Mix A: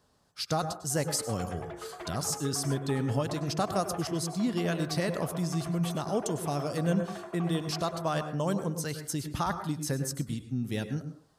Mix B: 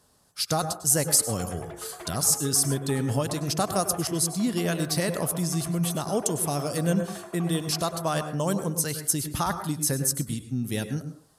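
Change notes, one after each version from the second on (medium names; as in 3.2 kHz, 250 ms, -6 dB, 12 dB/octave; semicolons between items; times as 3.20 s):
speech +3.0 dB; master: add peaking EQ 11 kHz +13 dB 1.1 oct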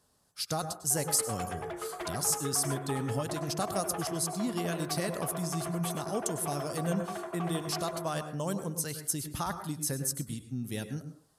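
speech -7.0 dB; background +3.5 dB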